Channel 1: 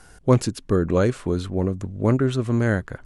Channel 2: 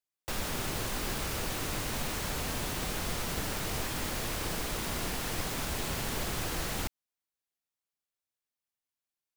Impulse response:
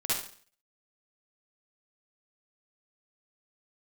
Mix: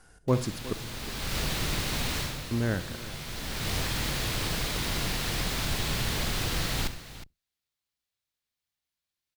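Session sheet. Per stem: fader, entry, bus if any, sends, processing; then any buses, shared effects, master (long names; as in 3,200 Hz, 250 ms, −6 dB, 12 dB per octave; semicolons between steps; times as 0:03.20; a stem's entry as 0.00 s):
−9.0 dB, 0.00 s, muted 0:00.73–0:02.51, send −19 dB, echo send −16 dB, no processing
−0.5 dB, 0.00 s, send −18 dB, echo send −14 dB, sub-octave generator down 2 octaves, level +3 dB; octave-band graphic EQ 125/2,000/4,000 Hz +5/+3/+7 dB; automatic ducking −20 dB, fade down 0.30 s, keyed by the first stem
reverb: on, RT60 0.50 s, pre-delay 47 ms
echo: single-tap delay 363 ms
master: no processing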